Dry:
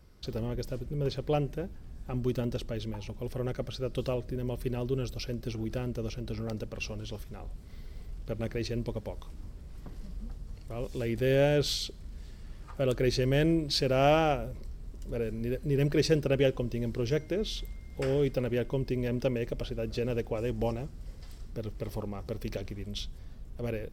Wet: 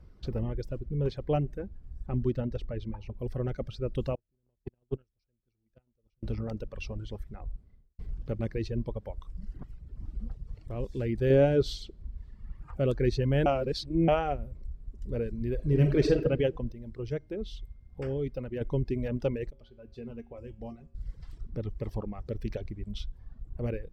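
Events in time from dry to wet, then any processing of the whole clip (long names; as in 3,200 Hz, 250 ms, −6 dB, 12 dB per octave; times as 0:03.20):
0:02.06–0:03.19: high-shelf EQ 5,300 Hz −10.5 dB
0:04.15–0:06.23: noise gate −28 dBFS, range −37 dB
0:07.46–0:07.99: fade out and dull
0:09.33–0:10.16: reverse
0:11.30–0:12.11: parametric band 360 Hz +5 dB 1.8 octaves
0:13.46–0:14.08: reverse
0:15.53–0:16.16: thrown reverb, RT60 1.1 s, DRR 1 dB
0:16.72–0:18.61: clip gain −5 dB
0:19.50–0:20.95: tuned comb filter 78 Hz, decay 0.68 s, harmonics odd, mix 80%
whole clip: low-pass filter 2,000 Hz 6 dB per octave; reverb reduction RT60 1.7 s; low-shelf EQ 190 Hz +6.5 dB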